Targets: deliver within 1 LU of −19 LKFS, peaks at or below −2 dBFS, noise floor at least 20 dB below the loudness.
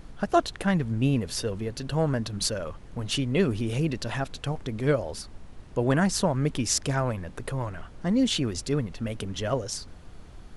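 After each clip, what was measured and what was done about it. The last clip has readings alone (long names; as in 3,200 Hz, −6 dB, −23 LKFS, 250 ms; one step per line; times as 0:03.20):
background noise floor −46 dBFS; target noise floor −48 dBFS; integrated loudness −28.0 LKFS; sample peak −7.5 dBFS; target loudness −19.0 LKFS
→ noise reduction from a noise print 6 dB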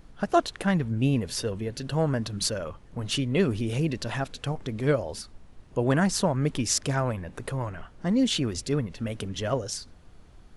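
background noise floor −51 dBFS; integrated loudness −28.0 LKFS; sample peak −7.5 dBFS; target loudness −19.0 LKFS
→ level +9 dB
brickwall limiter −2 dBFS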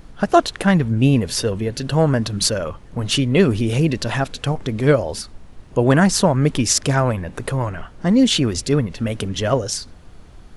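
integrated loudness −19.0 LKFS; sample peak −2.0 dBFS; background noise floor −42 dBFS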